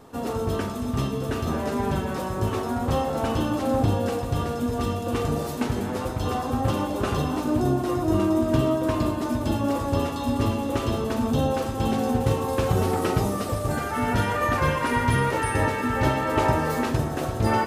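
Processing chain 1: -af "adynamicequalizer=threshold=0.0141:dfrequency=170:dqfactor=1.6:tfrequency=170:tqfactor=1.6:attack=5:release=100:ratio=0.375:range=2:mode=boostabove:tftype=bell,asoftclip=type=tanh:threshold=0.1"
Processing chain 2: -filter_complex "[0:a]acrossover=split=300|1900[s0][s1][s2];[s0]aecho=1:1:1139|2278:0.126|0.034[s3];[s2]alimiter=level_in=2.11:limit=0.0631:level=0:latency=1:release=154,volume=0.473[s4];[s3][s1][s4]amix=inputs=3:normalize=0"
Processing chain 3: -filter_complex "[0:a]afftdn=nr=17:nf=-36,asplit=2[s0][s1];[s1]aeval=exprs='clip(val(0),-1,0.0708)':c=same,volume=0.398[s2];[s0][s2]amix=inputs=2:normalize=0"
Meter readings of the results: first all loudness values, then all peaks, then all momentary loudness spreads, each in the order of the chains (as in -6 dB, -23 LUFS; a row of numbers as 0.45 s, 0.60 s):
-27.0 LUFS, -25.0 LUFS, -22.5 LUFS; -20.0 dBFS, -7.5 dBFS, -6.0 dBFS; 3 LU, 5 LU, 5 LU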